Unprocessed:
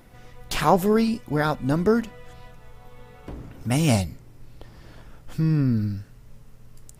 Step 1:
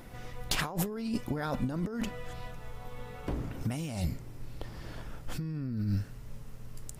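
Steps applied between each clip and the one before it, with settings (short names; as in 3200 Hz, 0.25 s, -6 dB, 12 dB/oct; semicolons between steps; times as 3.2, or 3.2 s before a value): negative-ratio compressor -29 dBFS, ratio -1; gain -3.5 dB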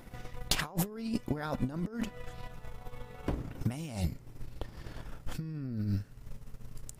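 transient shaper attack +6 dB, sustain -6 dB; gain -3 dB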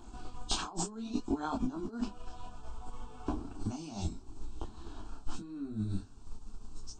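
nonlinear frequency compression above 2800 Hz 1.5:1; fixed phaser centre 530 Hz, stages 6; detuned doubles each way 24 cents; gain +6.5 dB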